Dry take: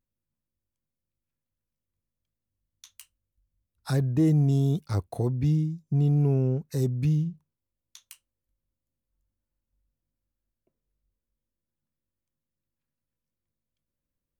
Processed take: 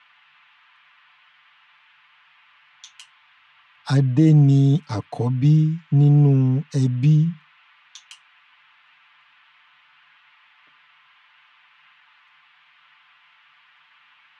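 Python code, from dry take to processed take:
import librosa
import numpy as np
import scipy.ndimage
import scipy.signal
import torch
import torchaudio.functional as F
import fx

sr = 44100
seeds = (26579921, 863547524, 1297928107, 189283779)

y = fx.cabinet(x, sr, low_hz=120.0, low_slope=24, high_hz=7400.0, hz=(240.0, 370.0, 960.0, 3100.0), db=(5, -8, 4, 7))
y = fx.dmg_noise_band(y, sr, seeds[0], low_hz=920.0, high_hz=3100.0, level_db=-62.0)
y = y + 0.78 * np.pad(y, (int(6.8 * sr / 1000.0), 0))[:len(y)]
y = y * librosa.db_to_amplitude(4.0)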